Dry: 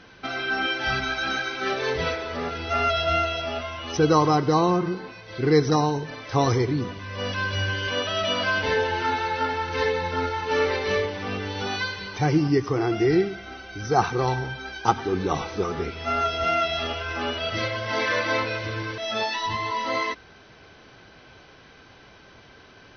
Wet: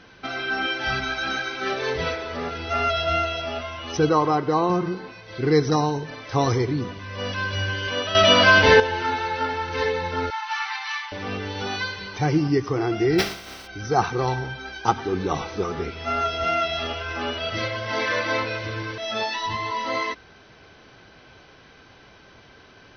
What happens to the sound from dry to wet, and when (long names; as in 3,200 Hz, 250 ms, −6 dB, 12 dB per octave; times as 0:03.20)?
0:04.09–0:04.70: bass and treble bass −6 dB, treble −11 dB
0:08.15–0:08.80: clip gain +10 dB
0:10.30–0:11.12: linear-phase brick-wall high-pass 750 Hz
0:13.18–0:13.66: compressing power law on the bin magnitudes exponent 0.35